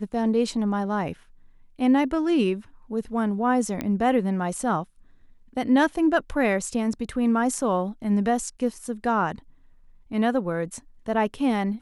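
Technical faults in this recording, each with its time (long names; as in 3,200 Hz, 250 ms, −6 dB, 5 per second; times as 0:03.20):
0:03.81: click −14 dBFS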